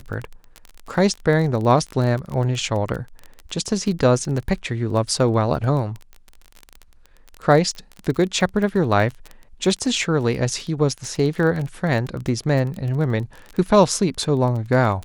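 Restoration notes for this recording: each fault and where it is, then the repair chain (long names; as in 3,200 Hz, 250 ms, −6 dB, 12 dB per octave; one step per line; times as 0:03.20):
surface crackle 24 per second −26 dBFS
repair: click removal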